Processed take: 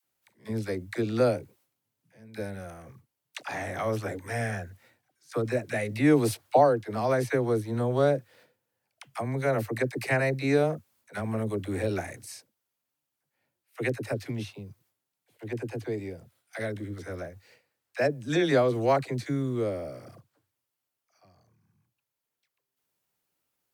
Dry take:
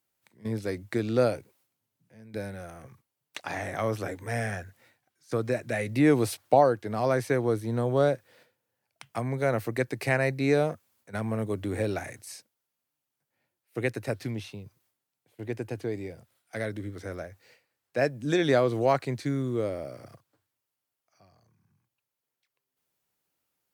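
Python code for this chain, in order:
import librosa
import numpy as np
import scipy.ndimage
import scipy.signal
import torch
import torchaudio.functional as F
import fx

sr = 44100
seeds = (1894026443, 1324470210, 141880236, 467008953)

y = fx.dispersion(x, sr, late='lows', ms=47.0, hz=570.0)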